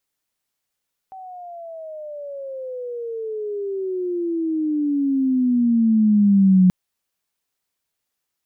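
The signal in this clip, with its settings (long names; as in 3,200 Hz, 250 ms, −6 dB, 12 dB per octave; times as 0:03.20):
pitch glide with a swell sine, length 5.58 s, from 768 Hz, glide −25 semitones, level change +25 dB, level −9.5 dB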